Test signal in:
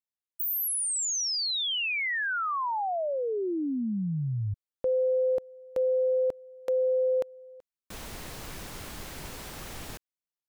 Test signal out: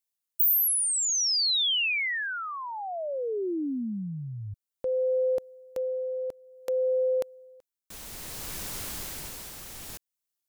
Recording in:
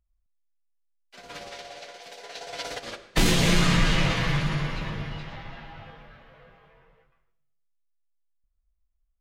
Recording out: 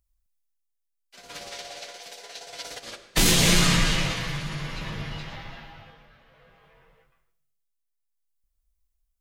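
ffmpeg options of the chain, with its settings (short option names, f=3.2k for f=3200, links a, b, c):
-af "tremolo=f=0.57:d=0.55,highshelf=f=4.3k:g=11.5"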